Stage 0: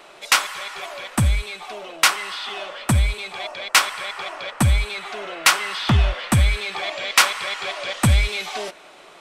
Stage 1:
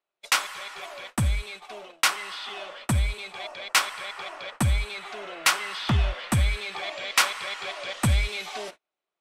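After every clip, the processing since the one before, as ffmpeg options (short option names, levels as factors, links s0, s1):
-af "agate=range=0.0141:threshold=0.0178:ratio=16:detection=peak,volume=0.501"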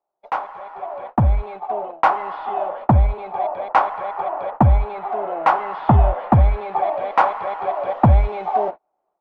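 -af "dynaudnorm=f=760:g=3:m=3.76,lowpass=f=810:t=q:w=3.8,volume=1.26"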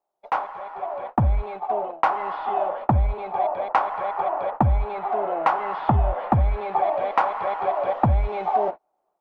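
-af "acompressor=threshold=0.158:ratio=5"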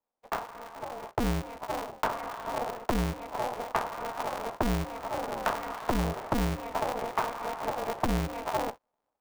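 -af "aeval=exprs='val(0)*sgn(sin(2*PI*120*n/s))':c=same,volume=0.355"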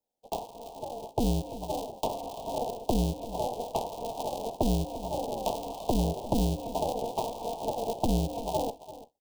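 -af "asuperstop=centerf=1600:order=8:qfactor=0.75,aecho=1:1:340:0.168,volume=1.26"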